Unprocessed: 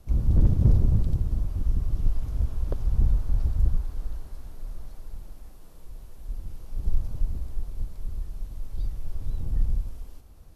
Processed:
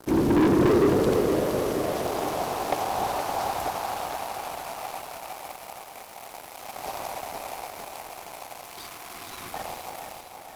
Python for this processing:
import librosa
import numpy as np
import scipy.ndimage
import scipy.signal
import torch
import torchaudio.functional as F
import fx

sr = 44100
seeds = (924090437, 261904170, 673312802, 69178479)

p1 = fx.filter_sweep_highpass(x, sr, from_hz=330.0, to_hz=760.0, start_s=0.44, end_s=2.31, q=4.5)
p2 = fx.leveller(p1, sr, passes=5)
p3 = p2 + fx.echo_feedback(p2, sr, ms=466, feedback_pct=59, wet_db=-7.5, dry=0)
y = fx.spec_repair(p3, sr, seeds[0], start_s=8.73, length_s=0.79, low_hz=430.0, high_hz=980.0, source='before')